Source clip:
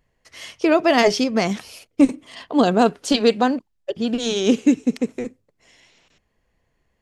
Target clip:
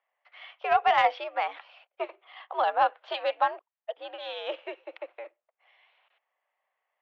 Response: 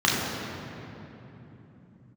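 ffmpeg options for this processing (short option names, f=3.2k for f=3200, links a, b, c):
-af "highpass=f=600:t=q:w=0.5412,highpass=f=600:t=q:w=1.307,lowpass=f=3.4k:t=q:w=0.5176,lowpass=f=3.4k:t=q:w=0.7071,lowpass=f=3.4k:t=q:w=1.932,afreqshift=84,highshelf=f=2.5k:g=-11,aeval=exprs='0.355*(cos(1*acos(clip(val(0)/0.355,-1,1)))-cos(1*PI/2))+0.0282*(cos(3*acos(clip(val(0)/0.355,-1,1)))-cos(3*PI/2))':c=same"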